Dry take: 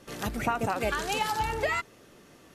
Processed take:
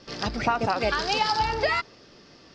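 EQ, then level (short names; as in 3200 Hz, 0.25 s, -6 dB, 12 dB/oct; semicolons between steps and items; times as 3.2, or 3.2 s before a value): dynamic EQ 860 Hz, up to +3 dB, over -42 dBFS, Q 0.77; synth low-pass 5000 Hz, resonance Q 7.5; air absorption 87 m; +2.0 dB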